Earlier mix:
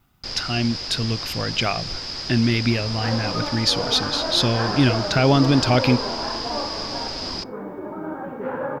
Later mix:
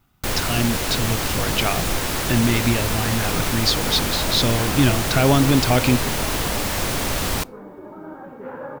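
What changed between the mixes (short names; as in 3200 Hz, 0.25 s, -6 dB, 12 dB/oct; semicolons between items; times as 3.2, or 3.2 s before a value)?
first sound: remove ladder low-pass 5100 Hz, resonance 90%; second sound -6.0 dB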